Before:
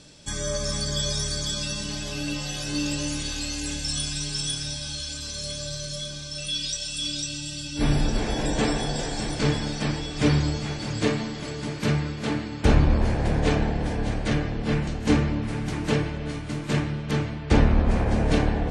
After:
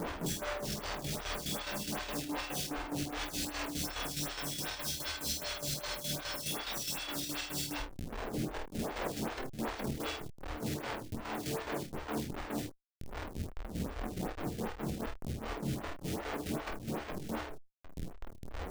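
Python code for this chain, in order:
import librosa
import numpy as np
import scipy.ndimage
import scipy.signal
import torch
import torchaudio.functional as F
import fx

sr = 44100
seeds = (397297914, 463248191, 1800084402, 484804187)

y = fx.highpass(x, sr, hz=91.0, slope=6)
y = fx.high_shelf(y, sr, hz=6400.0, db=-5.0)
y = fx.hum_notches(y, sr, base_hz=50, count=3)
y = fx.over_compress(y, sr, threshold_db=-35.0, ratio=-0.5)
y = fx.schmitt(y, sr, flips_db=-41.5)
y = fx.chopper(y, sr, hz=4.8, depth_pct=65, duty_pct=55)
y = fx.room_early_taps(y, sr, ms=(23, 49, 79), db=(-6.0, -3.5, -9.5))
y = fx.stagger_phaser(y, sr, hz=2.6)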